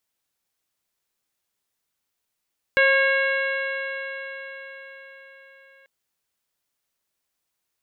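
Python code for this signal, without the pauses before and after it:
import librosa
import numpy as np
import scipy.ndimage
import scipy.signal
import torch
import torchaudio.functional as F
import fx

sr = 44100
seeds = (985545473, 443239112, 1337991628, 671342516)

y = fx.additive_stiff(sr, length_s=3.09, hz=539.0, level_db=-19.0, upper_db=(-10.5, 2.5, -2.0, -8.0, -16.5, -16.0), decay_s=4.88, stiffness=0.002)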